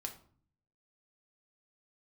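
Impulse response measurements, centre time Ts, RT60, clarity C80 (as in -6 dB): 11 ms, 0.50 s, 16.0 dB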